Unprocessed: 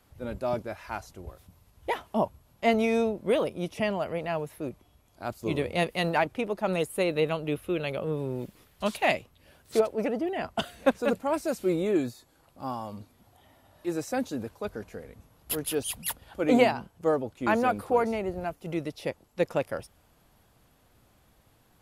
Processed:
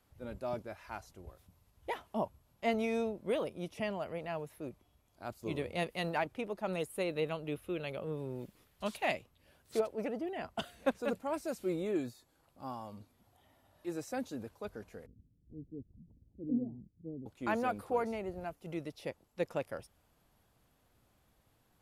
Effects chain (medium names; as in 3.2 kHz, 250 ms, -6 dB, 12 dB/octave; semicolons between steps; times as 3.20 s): 15.06–17.26 s: inverse Chebyshev low-pass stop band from 1.8 kHz, stop band 80 dB; trim -8.5 dB